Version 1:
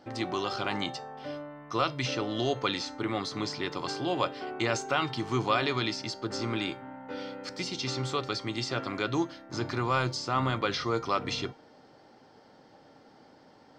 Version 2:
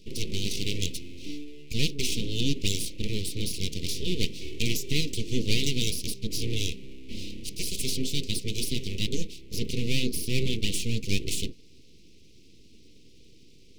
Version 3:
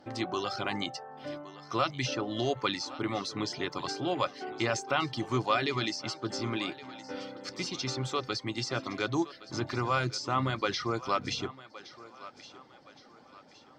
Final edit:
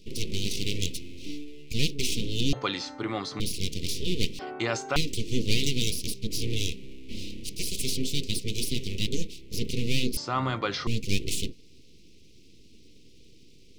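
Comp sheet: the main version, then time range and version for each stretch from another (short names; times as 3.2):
2
2.53–3.4 from 1
4.39–4.96 from 1
10.17–10.87 from 1
not used: 3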